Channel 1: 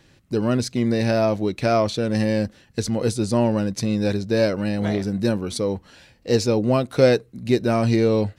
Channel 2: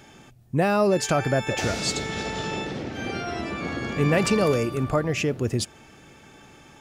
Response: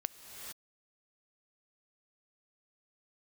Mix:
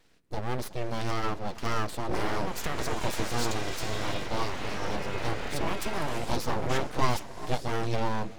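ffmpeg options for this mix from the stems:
-filter_complex "[0:a]flanger=delay=5.2:depth=2.4:regen=-49:speed=1.4:shape=sinusoidal,volume=-6dB,asplit=3[a][b][c];[b]volume=-8.5dB[d];[1:a]highpass=f=63:w=0.5412,highpass=f=63:w=1.3066,acompressor=threshold=-24dB:ratio=3,adelay=1550,volume=1dB,asplit=2[e][f];[f]volume=-9dB[g];[c]apad=whole_len=368654[h];[e][h]sidechaincompress=threshold=-39dB:ratio=8:attack=16:release=1420[i];[2:a]atrim=start_sample=2205[j];[d][g]amix=inputs=2:normalize=0[k];[k][j]afir=irnorm=-1:irlink=0[l];[a][i][l]amix=inputs=3:normalize=0,aeval=exprs='abs(val(0))':c=same"

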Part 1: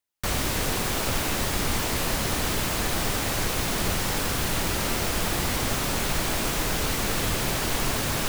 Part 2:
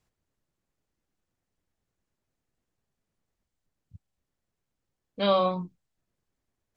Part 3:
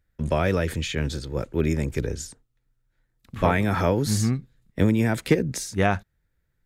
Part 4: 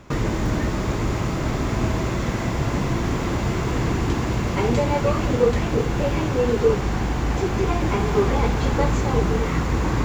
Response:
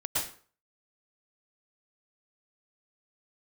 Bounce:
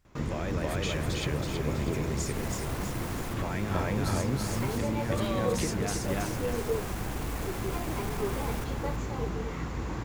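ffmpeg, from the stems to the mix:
-filter_complex "[0:a]highshelf=f=12k:g=-6,asoftclip=type=hard:threshold=-27dB,equalizer=f=4.1k:t=o:w=2:g=-8,adelay=350,volume=-7.5dB,asplit=2[a][b];[b]volume=-10dB[c];[1:a]volume=1.5dB[d];[2:a]acompressor=threshold=-27dB:ratio=6,volume=0dB,asplit=3[e][f][g];[f]volume=-3.5dB[h];[3:a]adelay=50,volume=-12.5dB[i];[g]apad=whole_len=380970[j];[a][j]sidechaincompress=threshold=-47dB:ratio=8:attack=16:release=101[k];[d][e]amix=inputs=2:normalize=0,alimiter=level_in=1.5dB:limit=-24dB:level=0:latency=1,volume=-1.5dB,volume=0dB[l];[c][h]amix=inputs=2:normalize=0,aecho=0:1:324|648|972|1296|1620|1944:1|0.44|0.194|0.0852|0.0375|0.0165[m];[k][i][l][m]amix=inputs=4:normalize=0"

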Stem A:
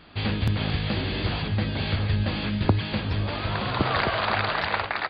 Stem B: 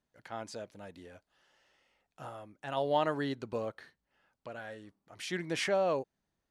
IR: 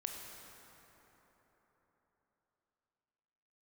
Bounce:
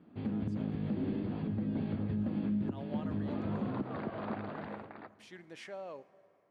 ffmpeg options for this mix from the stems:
-filter_complex "[0:a]alimiter=limit=-15dB:level=0:latency=1:release=457,dynaudnorm=f=160:g=9:m=3dB,bandpass=f=230:t=q:w=2:csg=0,volume=0.5dB,asplit=2[a][b];[b]volume=-14dB[c];[1:a]volume=-16dB,asplit=2[d][e];[e]volume=-12.5dB[f];[2:a]atrim=start_sample=2205[g];[c][f]amix=inputs=2:normalize=0[h];[h][g]afir=irnorm=-1:irlink=0[i];[a][d][i]amix=inputs=3:normalize=0,highpass=f=120:p=1,bass=f=250:g=-1,treble=f=4k:g=-4,alimiter=level_in=2dB:limit=-24dB:level=0:latency=1:release=136,volume=-2dB"

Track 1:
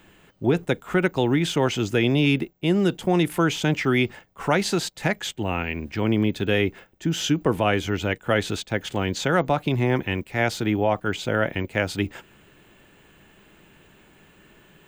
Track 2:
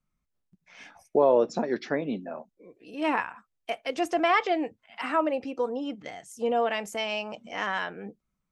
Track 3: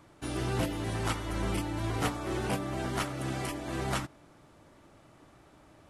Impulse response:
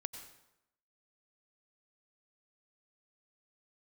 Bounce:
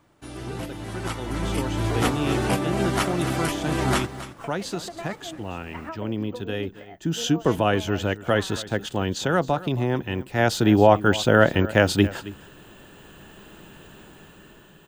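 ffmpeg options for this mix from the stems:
-filter_complex "[0:a]equalizer=f=2.2k:t=o:w=0.29:g=-11,volume=-1.5dB,afade=t=in:st=6.64:d=0.73:silence=0.421697,afade=t=in:st=10.09:d=0.73:silence=0.316228,asplit=2[a][b];[b]volume=-17.5dB[c];[1:a]lowpass=2.2k,acompressor=threshold=-31dB:ratio=6,tremolo=f=6.8:d=0.72,adelay=750,volume=-13.5dB[d];[2:a]volume=-3.5dB,asplit=2[e][f];[f]volume=-13.5dB[g];[c][g]amix=inputs=2:normalize=0,aecho=0:1:271:1[h];[a][d][e][h]amix=inputs=4:normalize=0,dynaudnorm=f=610:g=5:m=12dB"

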